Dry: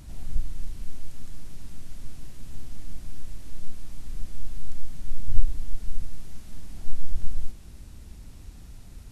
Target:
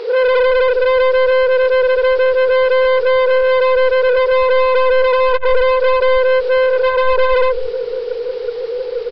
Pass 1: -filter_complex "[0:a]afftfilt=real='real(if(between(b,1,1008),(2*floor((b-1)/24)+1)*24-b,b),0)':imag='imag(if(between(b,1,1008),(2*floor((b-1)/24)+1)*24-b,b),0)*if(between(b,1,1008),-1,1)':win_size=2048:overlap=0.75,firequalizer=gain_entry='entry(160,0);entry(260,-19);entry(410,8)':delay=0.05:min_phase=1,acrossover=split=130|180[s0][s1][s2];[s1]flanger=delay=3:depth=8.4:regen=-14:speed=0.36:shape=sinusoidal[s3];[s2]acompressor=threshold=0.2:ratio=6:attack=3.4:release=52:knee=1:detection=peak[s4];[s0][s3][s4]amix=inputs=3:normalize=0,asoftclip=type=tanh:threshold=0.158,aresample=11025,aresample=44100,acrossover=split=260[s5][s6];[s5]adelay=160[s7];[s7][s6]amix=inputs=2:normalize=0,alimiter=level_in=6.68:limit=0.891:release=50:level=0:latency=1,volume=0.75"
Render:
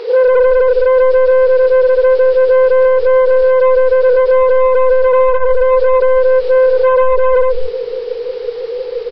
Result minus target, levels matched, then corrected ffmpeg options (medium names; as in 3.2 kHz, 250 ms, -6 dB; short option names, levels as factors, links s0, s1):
saturation: distortion -4 dB
-filter_complex "[0:a]afftfilt=real='real(if(between(b,1,1008),(2*floor((b-1)/24)+1)*24-b,b),0)':imag='imag(if(between(b,1,1008),(2*floor((b-1)/24)+1)*24-b,b),0)*if(between(b,1,1008),-1,1)':win_size=2048:overlap=0.75,firequalizer=gain_entry='entry(160,0);entry(260,-19);entry(410,8)':delay=0.05:min_phase=1,acrossover=split=130|180[s0][s1][s2];[s1]flanger=delay=3:depth=8.4:regen=-14:speed=0.36:shape=sinusoidal[s3];[s2]acompressor=threshold=0.2:ratio=6:attack=3.4:release=52:knee=1:detection=peak[s4];[s0][s3][s4]amix=inputs=3:normalize=0,asoftclip=type=tanh:threshold=0.0596,aresample=11025,aresample=44100,acrossover=split=260[s5][s6];[s5]adelay=160[s7];[s7][s6]amix=inputs=2:normalize=0,alimiter=level_in=6.68:limit=0.891:release=50:level=0:latency=1,volume=0.75"